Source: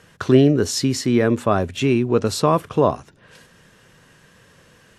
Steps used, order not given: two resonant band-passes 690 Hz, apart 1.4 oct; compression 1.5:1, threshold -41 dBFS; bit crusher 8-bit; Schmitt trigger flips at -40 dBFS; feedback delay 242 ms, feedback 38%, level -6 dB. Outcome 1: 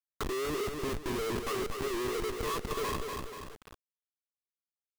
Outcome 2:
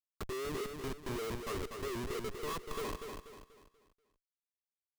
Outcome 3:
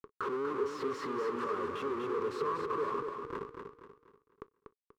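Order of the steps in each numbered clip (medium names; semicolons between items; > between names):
two resonant band-passes > Schmitt trigger > feedback delay > bit crusher > compression; compression > bit crusher > two resonant band-passes > Schmitt trigger > feedback delay; Schmitt trigger > bit crusher > two resonant band-passes > compression > feedback delay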